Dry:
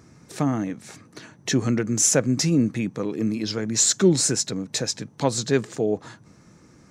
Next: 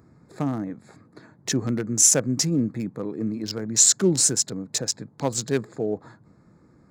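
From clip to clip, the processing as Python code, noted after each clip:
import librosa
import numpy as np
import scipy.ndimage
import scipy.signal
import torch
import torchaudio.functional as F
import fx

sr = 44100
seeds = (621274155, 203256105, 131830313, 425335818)

y = fx.wiener(x, sr, points=15)
y = fx.high_shelf(y, sr, hz=5400.0, db=11.0)
y = y * librosa.db_to_amplitude(-3.0)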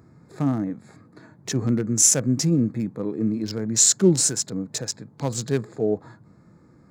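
y = fx.hpss(x, sr, part='harmonic', gain_db=8)
y = y * librosa.db_to_amplitude(-3.5)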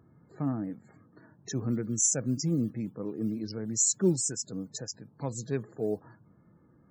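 y = fx.mod_noise(x, sr, seeds[0], snr_db=25)
y = fx.spec_topn(y, sr, count=64)
y = y * librosa.db_to_amplitude(-8.0)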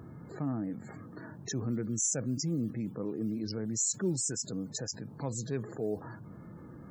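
y = fx.env_flatten(x, sr, amount_pct=50)
y = y * librosa.db_to_amplitude(-7.5)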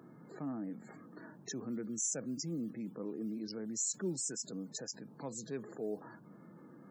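y = scipy.signal.sosfilt(scipy.signal.butter(4, 170.0, 'highpass', fs=sr, output='sos'), x)
y = y * librosa.db_to_amplitude(-5.0)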